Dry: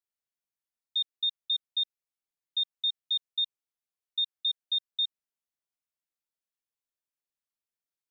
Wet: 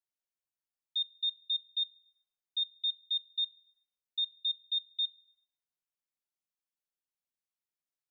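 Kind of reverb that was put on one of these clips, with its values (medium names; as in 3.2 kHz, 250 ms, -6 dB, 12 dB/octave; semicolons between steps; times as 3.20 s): simulated room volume 3800 m³, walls furnished, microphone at 0.98 m; trim -5.5 dB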